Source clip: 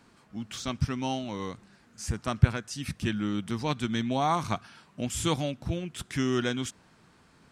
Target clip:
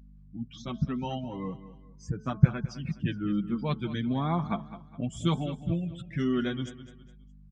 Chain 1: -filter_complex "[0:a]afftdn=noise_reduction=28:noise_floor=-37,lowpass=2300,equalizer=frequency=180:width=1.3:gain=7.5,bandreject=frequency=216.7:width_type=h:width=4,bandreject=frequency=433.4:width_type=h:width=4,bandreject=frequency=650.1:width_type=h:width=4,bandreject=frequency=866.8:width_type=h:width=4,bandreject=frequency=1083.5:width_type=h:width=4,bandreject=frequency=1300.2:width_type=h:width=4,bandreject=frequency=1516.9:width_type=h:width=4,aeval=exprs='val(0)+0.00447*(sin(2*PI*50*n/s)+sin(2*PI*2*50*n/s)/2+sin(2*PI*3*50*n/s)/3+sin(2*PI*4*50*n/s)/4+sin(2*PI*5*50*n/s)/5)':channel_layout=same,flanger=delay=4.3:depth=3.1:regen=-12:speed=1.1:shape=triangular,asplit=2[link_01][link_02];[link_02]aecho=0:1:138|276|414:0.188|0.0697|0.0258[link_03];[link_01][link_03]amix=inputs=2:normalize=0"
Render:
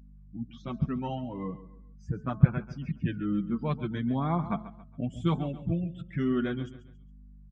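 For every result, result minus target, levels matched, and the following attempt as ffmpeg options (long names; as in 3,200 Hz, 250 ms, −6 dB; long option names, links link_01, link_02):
echo 69 ms early; 4,000 Hz band −6.5 dB
-filter_complex "[0:a]afftdn=noise_reduction=28:noise_floor=-37,lowpass=2300,equalizer=frequency=180:width=1.3:gain=7.5,bandreject=frequency=216.7:width_type=h:width=4,bandreject=frequency=433.4:width_type=h:width=4,bandreject=frequency=650.1:width_type=h:width=4,bandreject=frequency=866.8:width_type=h:width=4,bandreject=frequency=1083.5:width_type=h:width=4,bandreject=frequency=1300.2:width_type=h:width=4,bandreject=frequency=1516.9:width_type=h:width=4,aeval=exprs='val(0)+0.00447*(sin(2*PI*50*n/s)+sin(2*PI*2*50*n/s)/2+sin(2*PI*3*50*n/s)/3+sin(2*PI*4*50*n/s)/4+sin(2*PI*5*50*n/s)/5)':channel_layout=same,flanger=delay=4.3:depth=3.1:regen=-12:speed=1.1:shape=triangular,asplit=2[link_01][link_02];[link_02]aecho=0:1:207|414|621:0.188|0.0697|0.0258[link_03];[link_01][link_03]amix=inputs=2:normalize=0"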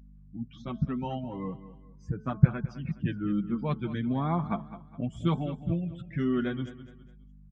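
4,000 Hz band −6.5 dB
-filter_complex "[0:a]afftdn=noise_reduction=28:noise_floor=-37,lowpass=5300,equalizer=frequency=180:width=1.3:gain=7.5,bandreject=frequency=216.7:width_type=h:width=4,bandreject=frequency=433.4:width_type=h:width=4,bandreject=frequency=650.1:width_type=h:width=4,bandreject=frequency=866.8:width_type=h:width=4,bandreject=frequency=1083.5:width_type=h:width=4,bandreject=frequency=1300.2:width_type=h:width=4,bandreject=frequency=1516.9:width_type=h:width=4,aeval=exprs='val(0)+0.00447*(sin(2*PI*50*n/s)+sin(2*PI*2*50*n/s)/2+sin(2*PI*3*50*n/s)/3+sin(2*PI*4*50*n/s)/4+sin(2*PI*5*50*n/s)/5)':channel_layout=same,flanger=delay=4.3:depth=3.1:regen=-12:speed=1.1:shape=triangular,asplit=2[link_01][link_02];[link_02]aecho=0:1:207|414|621:0.188|0.0697|0.0258[link_03];[link_01][link_03]amix=inputs=2:normalize=0"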